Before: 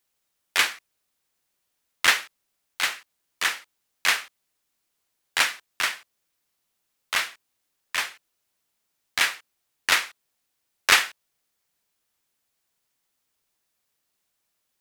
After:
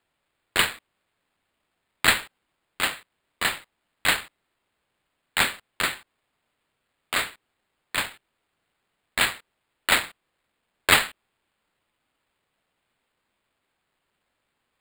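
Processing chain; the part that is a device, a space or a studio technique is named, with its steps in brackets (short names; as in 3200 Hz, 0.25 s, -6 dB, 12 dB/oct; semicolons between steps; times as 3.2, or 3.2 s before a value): crushed at another speed (playback speed 0.5×; sample-and-hold 15×; playback speed 2×)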